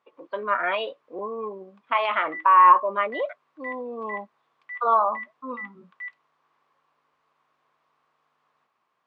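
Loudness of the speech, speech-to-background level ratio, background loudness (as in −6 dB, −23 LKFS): −22.0 LKFS, 17.0 dB, −39.0 LKFS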